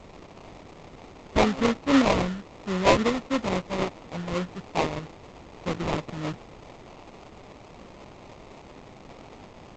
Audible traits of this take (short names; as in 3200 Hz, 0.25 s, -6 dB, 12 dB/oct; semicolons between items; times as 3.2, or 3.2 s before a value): a quantiser's noise floor 8-bit, dither triangular; phasing stages 6, 3.7 Hz, lowest notch 440–1100 Hz; aliases and images of a low sample rate 1600 Hz, jitter 20%; G.722